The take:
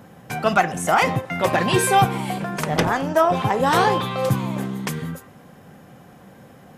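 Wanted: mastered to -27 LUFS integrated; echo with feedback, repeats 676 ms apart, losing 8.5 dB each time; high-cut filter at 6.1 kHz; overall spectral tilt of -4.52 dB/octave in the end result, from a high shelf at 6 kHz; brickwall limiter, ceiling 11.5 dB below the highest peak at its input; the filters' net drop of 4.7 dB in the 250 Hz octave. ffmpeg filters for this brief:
-af "lowpass=6100,equalizer=f=250:t=o:g=-7.5,highshelf=f=6000:g=5.5,alimiter=limit=0.188:level=0:latency=1,aecho=1:1:676|1352|2028|2704:0.376|0.143|0.0543|0.0206,volume=0.794"

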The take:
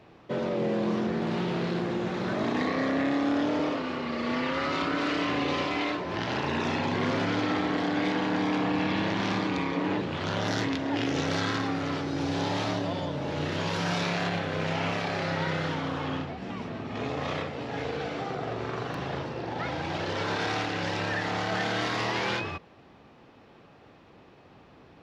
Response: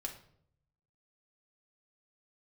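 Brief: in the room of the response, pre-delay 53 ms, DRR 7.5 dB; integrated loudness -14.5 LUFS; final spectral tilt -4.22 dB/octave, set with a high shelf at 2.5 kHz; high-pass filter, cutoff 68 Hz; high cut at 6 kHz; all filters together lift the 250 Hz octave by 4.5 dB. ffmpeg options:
-filter_complex "[0:a]highpass=68,lowpass=6000,equalizer=f=250:t=o:g=5.5,highshelf=f=2500:g=4.5,asplit=2[s0][s1];[1:a]atrim=start_sample=2205,adelay=53[s2];[s1][s2]afir=irnorm=-1:irlink=0,volume=0.473[s3];[s0][s3]amix=inputs=2:normalize=0,volume=3.76"

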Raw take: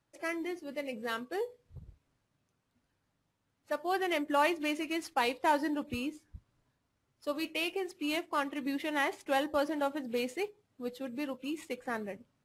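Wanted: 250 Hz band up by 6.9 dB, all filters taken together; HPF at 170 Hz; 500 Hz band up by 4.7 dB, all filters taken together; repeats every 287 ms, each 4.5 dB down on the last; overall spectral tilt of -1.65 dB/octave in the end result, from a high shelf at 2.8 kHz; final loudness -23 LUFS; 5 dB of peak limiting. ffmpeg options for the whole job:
-af "highpass=170,equalizer=f=250:t=o:g=8,equalizer=f=500:t=o:g=3.5,highshelf=f=2800:g=5,alimiter=limit=0.112:level=0:latency=1,aecho=1:1:287|574|861|1148|1435|1722|2009|2296|2583:0.596|0.357|0.214|0.129|0.0772|0.0463|0.0278|0.0167|0.01,volume=2.11"

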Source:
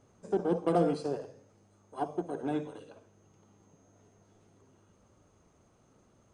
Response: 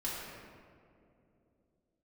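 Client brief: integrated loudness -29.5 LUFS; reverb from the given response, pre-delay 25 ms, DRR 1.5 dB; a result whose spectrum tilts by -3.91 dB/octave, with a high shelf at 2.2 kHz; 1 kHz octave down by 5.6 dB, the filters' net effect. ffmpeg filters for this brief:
-filter_complex "[0:a]equalizer=f=1000:t=o:g=-8,highshelf=f=2200:g=-8.5,asplit=2[s0][s1];[1:a]atrim=start_sample=2205,adelay=25[s2];[s1][s2]afir=irnorm=-1:irlink=0,volume=0.562[s3];[s0][s3]amix=inputs=2:normalize=0,volume=1.41"

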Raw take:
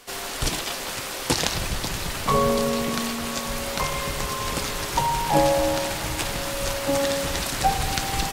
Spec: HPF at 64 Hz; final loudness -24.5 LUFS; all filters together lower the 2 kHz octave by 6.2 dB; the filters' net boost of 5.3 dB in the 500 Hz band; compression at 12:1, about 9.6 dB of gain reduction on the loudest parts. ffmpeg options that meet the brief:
-af "highpass=64,equalizer=f=500:t=o:g=6.5,equalizer=f=2000:t=o:g=-8.5,acompressor=threshold=0.0891:ratio=12,volume=1.33"

